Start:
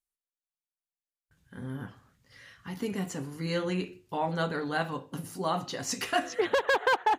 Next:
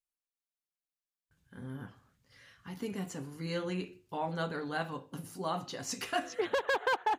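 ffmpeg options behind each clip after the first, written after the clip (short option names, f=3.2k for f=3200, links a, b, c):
-af "bandreject=f=1.9k:w=25,volume=-5dB"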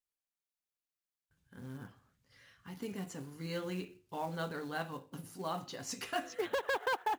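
-af "acrusher=bits=5:mode=log:mix=0:aa=0.000001,volume=-3.5dB"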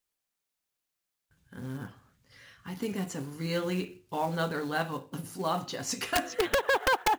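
-af "aeval=exprs='(mod(18.8*val(0)+1,2)-1)/18.8':c=same,volume=8dB"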